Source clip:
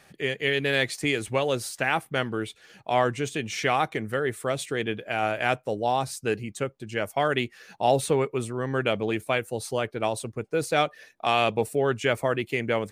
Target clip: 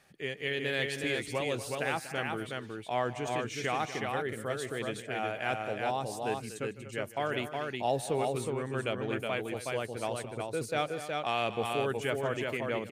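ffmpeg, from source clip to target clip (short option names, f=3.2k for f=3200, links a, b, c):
-af "aecho=1:1:153|240|368:0.133|0.224|0.668,volume=-8.5dB"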